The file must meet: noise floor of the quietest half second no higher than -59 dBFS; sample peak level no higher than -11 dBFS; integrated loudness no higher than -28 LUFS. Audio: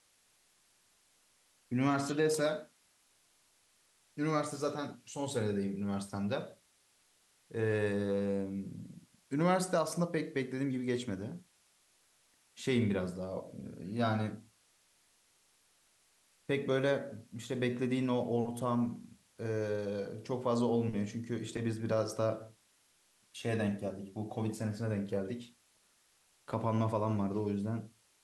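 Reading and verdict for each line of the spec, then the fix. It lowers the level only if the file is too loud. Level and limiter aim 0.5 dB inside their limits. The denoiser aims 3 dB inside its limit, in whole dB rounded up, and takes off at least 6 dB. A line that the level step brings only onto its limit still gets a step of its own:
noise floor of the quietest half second -70 dBFS: OK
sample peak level -18.5 dBFS: OK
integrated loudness -35.0 LUFS: OK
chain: none

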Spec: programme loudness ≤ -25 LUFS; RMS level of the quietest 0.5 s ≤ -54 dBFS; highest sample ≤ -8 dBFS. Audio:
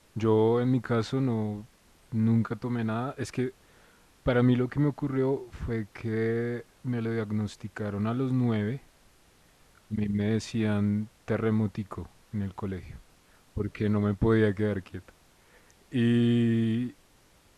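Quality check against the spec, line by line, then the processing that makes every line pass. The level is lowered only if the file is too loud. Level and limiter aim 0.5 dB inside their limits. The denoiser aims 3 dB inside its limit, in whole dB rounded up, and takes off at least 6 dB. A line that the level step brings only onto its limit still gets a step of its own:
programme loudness -28.5 LUFS: OK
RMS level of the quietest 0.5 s -61 dBFS: OK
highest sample -13.0 dBFS: OK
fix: none

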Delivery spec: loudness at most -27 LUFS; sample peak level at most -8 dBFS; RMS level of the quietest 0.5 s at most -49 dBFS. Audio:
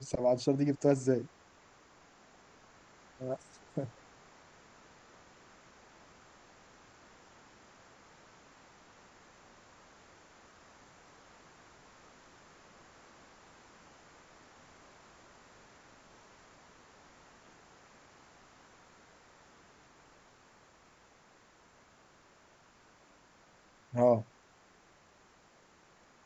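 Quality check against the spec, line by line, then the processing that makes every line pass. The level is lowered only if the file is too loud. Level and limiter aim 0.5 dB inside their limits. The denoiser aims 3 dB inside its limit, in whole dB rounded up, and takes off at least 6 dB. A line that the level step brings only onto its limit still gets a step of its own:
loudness -32.0 LUFS: OK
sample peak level -14.5 dBFS: OK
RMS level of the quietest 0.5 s -63 dBFS: OK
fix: none

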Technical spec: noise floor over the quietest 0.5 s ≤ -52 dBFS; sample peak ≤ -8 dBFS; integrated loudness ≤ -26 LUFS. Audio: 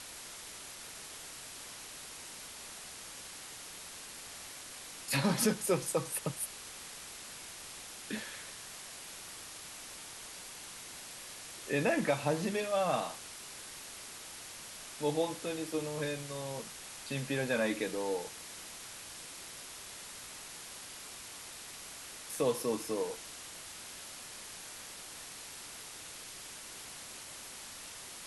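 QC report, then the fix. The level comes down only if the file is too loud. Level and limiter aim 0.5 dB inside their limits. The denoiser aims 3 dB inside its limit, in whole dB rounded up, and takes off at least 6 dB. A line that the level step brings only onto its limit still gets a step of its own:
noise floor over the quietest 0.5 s -48 dBFS: fail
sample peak -16.5 dBFS: OK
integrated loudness -38.5 LUFS: OK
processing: denoiser 7 dB, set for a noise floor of -48 dBFS

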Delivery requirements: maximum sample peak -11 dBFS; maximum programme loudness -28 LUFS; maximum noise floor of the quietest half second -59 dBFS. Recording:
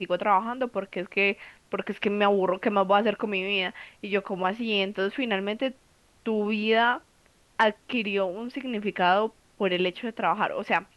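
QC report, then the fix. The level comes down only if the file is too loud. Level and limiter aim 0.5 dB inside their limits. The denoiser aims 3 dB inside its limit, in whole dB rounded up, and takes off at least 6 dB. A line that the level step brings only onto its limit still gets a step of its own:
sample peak -9.0 dBFS: fail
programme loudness -26.5 LUFS: fail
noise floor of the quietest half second -61 dBFS: OK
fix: gain -2 dB; limiter -11.5 dBFS

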